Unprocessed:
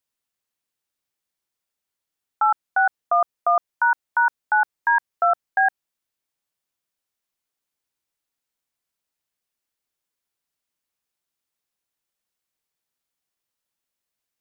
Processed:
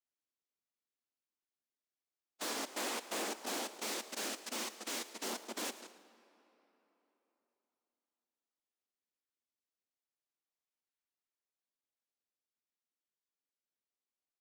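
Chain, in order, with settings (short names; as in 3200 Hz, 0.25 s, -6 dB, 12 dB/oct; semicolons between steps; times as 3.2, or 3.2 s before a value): reverse delay 0.115 s, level -9 dB; harmonic-percussive split percussive -16 dB; noise vocoder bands 2; tube stage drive 33 dB, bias 0.7; in parallel at -5.5 dB: decimation with a swept rate 30×, swing 160% 0.25 Hz; on the sum: brick-wall FIR high-pass 200 Hz; frequency-shifting echo 0.111 s, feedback 32%, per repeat +96 Hz, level -16 dB; on a send at -16 dB: reverb RT60 3.8 s, pre-delay 12 ms; on the sum: gain -6 dB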